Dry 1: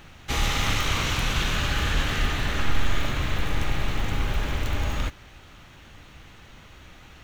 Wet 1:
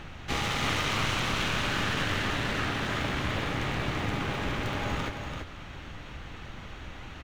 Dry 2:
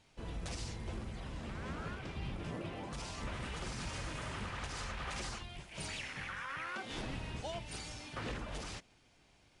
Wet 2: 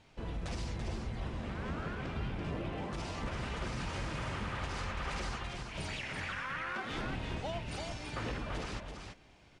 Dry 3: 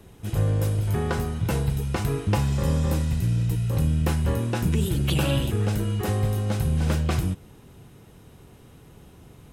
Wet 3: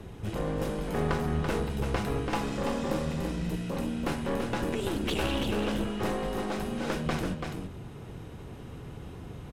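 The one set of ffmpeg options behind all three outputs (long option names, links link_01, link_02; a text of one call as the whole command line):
ffmpeg -i in.wav -filter_complex "[0:a]aemphasis=mode=reproduction:type=50kf,afftfilt=real='re*lt(hypot(re,im),0.398)':imag='im*lt(hypot(re,im),0.398)':win_size=1024:overlap=0.75,asplit=2[link_01][link_02];[link_02]acompressor=threshold=-45dB:ratio=10,volume=0dB[link_03];[link_01][link_03]amix=inputs=2:normalize=0,aeval=exprs='clip(val(0),-1,0.0266)':channel_layout=same,aecho=1:1:335:0.531" out.wav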